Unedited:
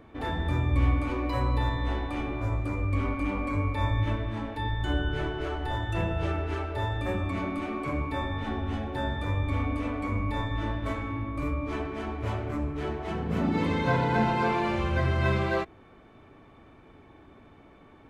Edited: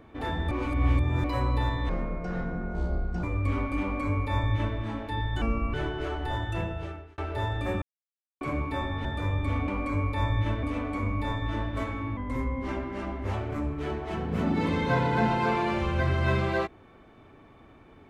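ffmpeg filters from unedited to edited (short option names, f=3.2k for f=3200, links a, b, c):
-filter_complex "[0:a]asplit=15[a][b][c][d][e][f][g][h][i][j][k][l][m][n][o];[a]atrim=end=0.512[p];[b]atrim=start=0.508:end=1.242,asetpts=PTS-STARTPTS,areverse[q];[c]atrim=start=1.238:end=1.894[r];[d]atrim=start=1.89:end=2.71,asetpts=PTS-STARTPTS,asetrate=26901,aresample=44100[s];[e]atrim=start=2.706:end=4.894[t];[f]atrim=start=4.89:end=5.14,asetpts=PTS-STARTPTS,asetrate=33957,aresample=44100,atrim=end_sample=14318,asetpts=PTS-STARTPTS[u];[g]atrim=start=5.136:end=6.58,asetpts=PTS-STARTPTS,afade=t=out:st=0.684:d=0.76[v];[h]atrim=start=6.58:end=7.22,asetpts=PTS-STARTPTS,afade=t=in:d=0.004:c=hsin,afade=t=out:st=0.636:d=0.004:c=hsin[w];[i]atrim=start=7.22:end=7.81,asetpts=PTS-STARTPTS,volume=0[x];[j]atrim=start=7.81:end=8.452,asetpts=PTS-STARTPTS,afade=t=in:d=0.004:c=hsin[y];[k]atrim=start=9.088:end=9.722[z];[l]atrim=start=3.288:end=4.242[aa];[m]atrim=start=9.718:end=11.264[ab];[n]atrim=start=11.26:end=12.31,asetpts=PTS-STARTPTS,asetrate=39690,aresample=44100[ac];[o]atrim=start=12.306[ad];[p][q]acrossfade=d=0.004:c1=hsin:c2=hsin[ae];[ae][r]acrossfade=d=0.004:c1=hsin:c2=hsin[af];[af][s]acrossfade=d=0.004:c1=hsin:c2=hsin[ag];[ag][t]acrossfade=d=0.004:c1=hsin:c2=hsin[ah];[ah][u]acrossfade=d=0.004:c1=hsin:c2=hsin[ai];[v][w][x][y]concat=n=4:v=0:a=1[aj];[ai][aj]acrossfade=d=0.004:c1=hsin:c2=hsin[ak];[ak][z]acrossfade=d=0.004:c1=hsin:c2=hsin[al];[al][aa]acrossfade=d=0.004:c1=hsin:c2=hsin[am];[am][ab]acrossfade=d=0.004:c1=hsin:c2=hsin[an];[an][ac]acrossfade=d=0.004:c1=hsin:c2=hsin[ao];[ao][ad]acrossfade=d=0.004:c1=hsin:c2=hsin"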